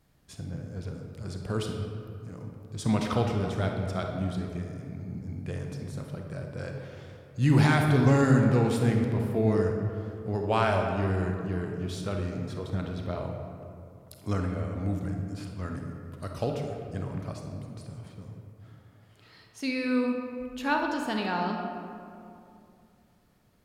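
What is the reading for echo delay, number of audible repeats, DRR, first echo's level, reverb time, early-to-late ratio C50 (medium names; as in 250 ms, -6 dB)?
no echo, no echo, 2.0 dB, no echo, 2.7 s, 3.0 dB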